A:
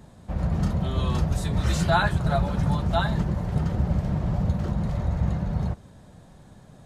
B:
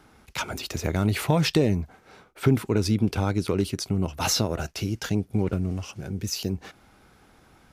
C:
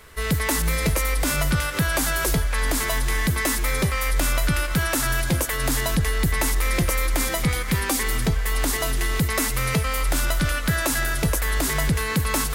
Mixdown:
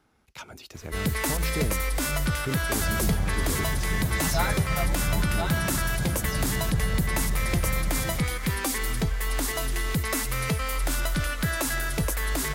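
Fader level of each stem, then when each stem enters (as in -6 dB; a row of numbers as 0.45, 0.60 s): -7.0, -11.5, -4.5 dB; 2.45, 0.00, 0.75 s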